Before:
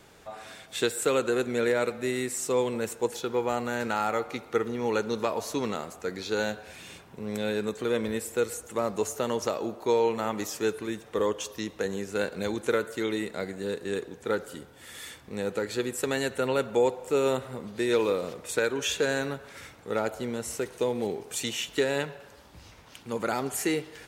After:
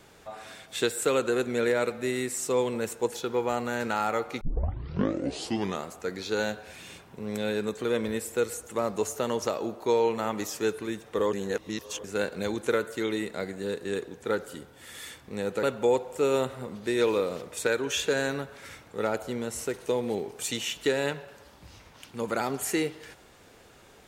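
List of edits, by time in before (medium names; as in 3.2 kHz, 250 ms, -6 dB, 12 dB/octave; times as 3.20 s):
4.41 s: tape start 1.42 s
11.33–12.04 s: reverse
15.63–16.55 s: delete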